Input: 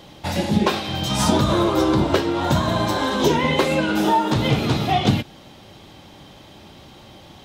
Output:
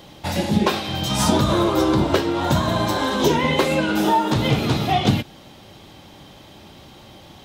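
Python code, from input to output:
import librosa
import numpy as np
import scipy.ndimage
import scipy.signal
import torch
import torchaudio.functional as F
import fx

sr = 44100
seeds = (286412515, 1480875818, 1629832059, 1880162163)

y = fx.high_shelf(x, sr, hz=12000.0, db=5.5)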